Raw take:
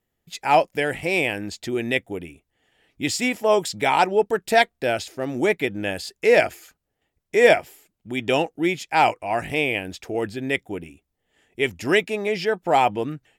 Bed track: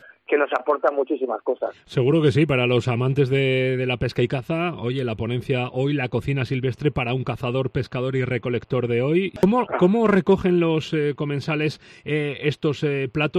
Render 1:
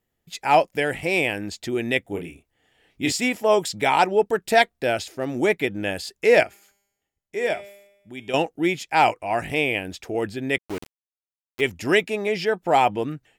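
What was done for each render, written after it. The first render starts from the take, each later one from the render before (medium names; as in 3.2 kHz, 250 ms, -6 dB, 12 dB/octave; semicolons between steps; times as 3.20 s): 2.02–3.12 s: doubling 30 ms -4.5 dB; 6.43–8.34 s: feedback comb 200 Hz, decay 0.97 s, mix 70%; 10.58–11.61 s: small samples zeroed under -31.5 dBFS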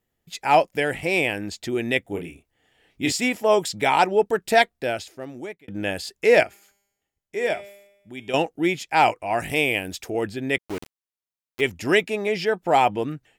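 4.57–5.68 s: fade out; 9.40–10.10 s: treble shelf 6 kHz +10.5 dB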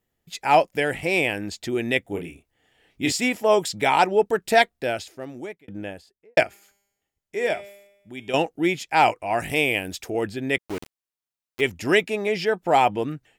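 5.37–6.37 s: studio fade out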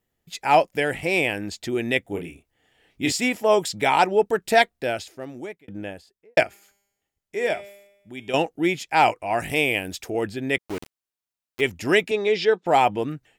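12.11–12.66 s: cabinet simulation 210–7300 Hz, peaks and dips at 440 Hz +5 dB, 670 Hz -6 dB, 3.7 kHz +9 dB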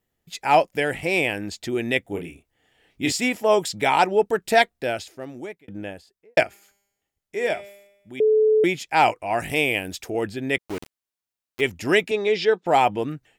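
8.20–8.64 s: bleep 433 Hz -14 dBFS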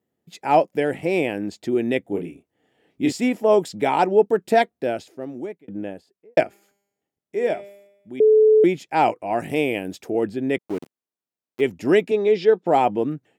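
high-pass 200 Hz 12 dB/octave; tilt shelf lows +8 dB, about 750 Hz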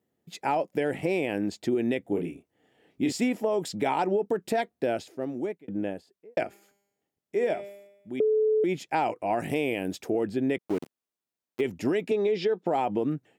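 peak limiter -14 dBFS, peak gain reduction 10 dB; compression, threshold -22 dBFS, peak gain reduction 6 dB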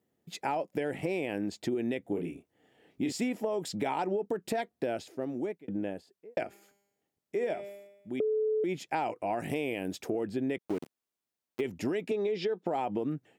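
compression 2:1, threshold -32 dBFS, peak gain reduction 6.5 dB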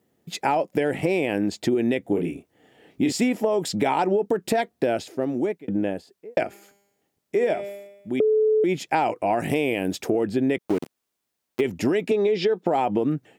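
trim +9.5 dB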